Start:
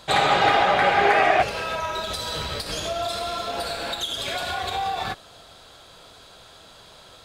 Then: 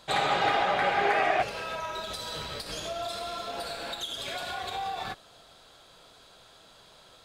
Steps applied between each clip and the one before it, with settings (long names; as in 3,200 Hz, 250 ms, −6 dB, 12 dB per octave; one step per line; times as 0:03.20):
parametric band 77 Hz −7 dB 0.63 octaves
level −7 dB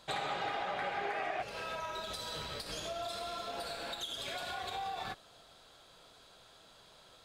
downward compressor 4 to 1, threshold −30 dBFS, peak gain reduction 8.5 dB
level −4.5 dB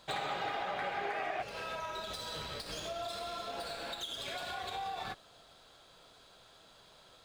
running median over 3 samples